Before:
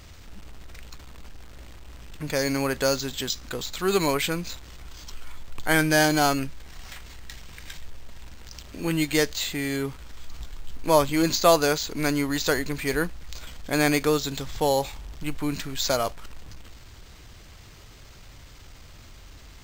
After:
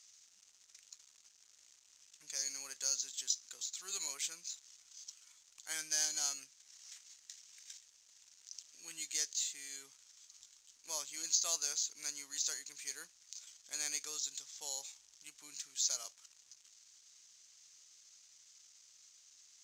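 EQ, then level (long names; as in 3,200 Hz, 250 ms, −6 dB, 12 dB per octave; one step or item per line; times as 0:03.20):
resonant band-pass 6,400 Hz, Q 3.9
0.0 dB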